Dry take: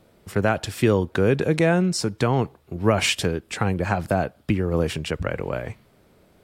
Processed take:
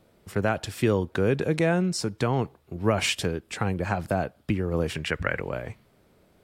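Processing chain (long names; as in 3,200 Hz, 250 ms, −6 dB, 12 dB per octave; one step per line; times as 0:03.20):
0:04.95–0:05.41: parametric band 1,800 Hz +11.5 dB 1 octave
level −4 dB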